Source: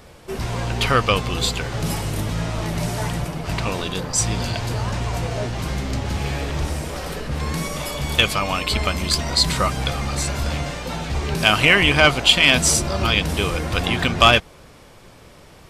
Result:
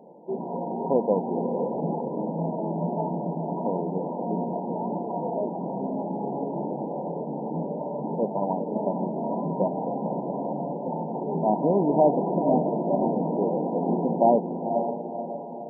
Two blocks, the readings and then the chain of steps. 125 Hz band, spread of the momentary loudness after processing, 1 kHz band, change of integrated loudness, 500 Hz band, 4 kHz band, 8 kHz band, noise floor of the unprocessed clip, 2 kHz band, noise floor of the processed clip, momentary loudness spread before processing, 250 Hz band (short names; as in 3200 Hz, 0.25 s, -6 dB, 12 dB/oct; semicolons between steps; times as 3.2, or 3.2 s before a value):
-10.5 dB, 9 LU, -3.0 dB, -7.0 dB, +1.0 dB, under -40 dB, under -40 dB, -46 dBFS, under -40 dB, -34 dBFS, 13 LU, +0.5 dB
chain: brick-wall FIR band-pass 160–1000 Hz; diffused feedback echo 0.518 s, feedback 49%, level -6 dB